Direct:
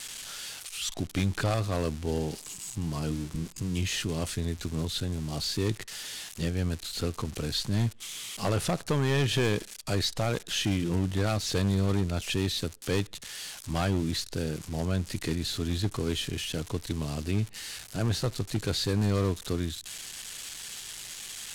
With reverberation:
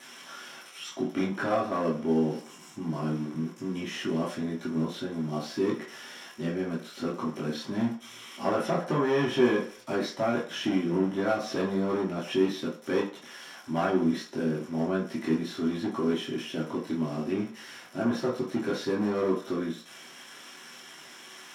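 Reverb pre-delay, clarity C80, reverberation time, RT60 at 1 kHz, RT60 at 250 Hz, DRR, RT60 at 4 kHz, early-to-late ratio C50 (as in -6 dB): 3 ms, 12.5 dB, 0.50 s, 0.50 s, 0.40 s, -6.5 dB, 0.45 s, 7.0 dB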